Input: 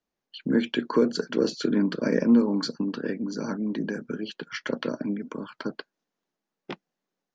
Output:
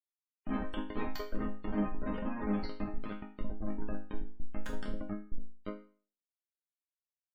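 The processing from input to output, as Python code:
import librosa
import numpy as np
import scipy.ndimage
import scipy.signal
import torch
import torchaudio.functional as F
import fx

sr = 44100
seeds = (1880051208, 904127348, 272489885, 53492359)

y = fx.schmitt(x, sr, flips_db=-23.0)
y = fx.spec_gate(y, sr, threshold_db=-25, keep='strong')
y = fx.resonator_bank(y, sr, root=56, chord='major', decay_s=0.41)
y = y * 10.0 ** (14.0 / 20.0)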